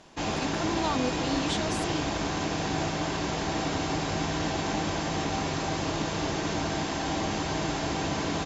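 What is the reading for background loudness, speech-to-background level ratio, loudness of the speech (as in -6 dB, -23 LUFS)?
-29.5 LUFS, -4.0 dB, -33.5 LUFS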